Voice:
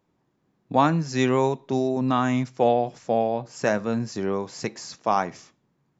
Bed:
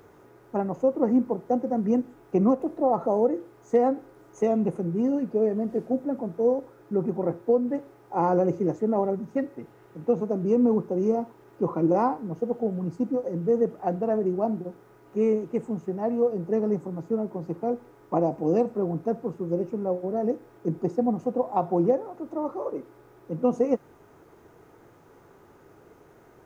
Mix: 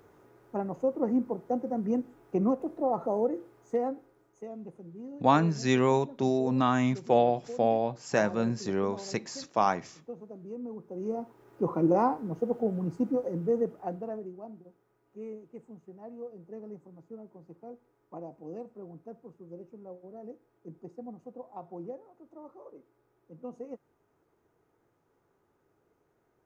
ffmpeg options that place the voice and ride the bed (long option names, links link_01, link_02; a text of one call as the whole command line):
ffmpeg -i stem1.wav -i stem2.wav -filter_complex "[0:a]adelay=4500,volume=-3dB[link_01];[1:a]volume=11dB,afade=type=out:start_time=3.45:duration=0.96:silence=0.223872,afade=type=in:start_time=10.78:duration=0.99:silence=0.149624,afade=type=out:start_time=13.17:duration=1.17:silence=0.149624[link_02];[link_01][link_02]amix=inputs=2:normalize=0" out.wav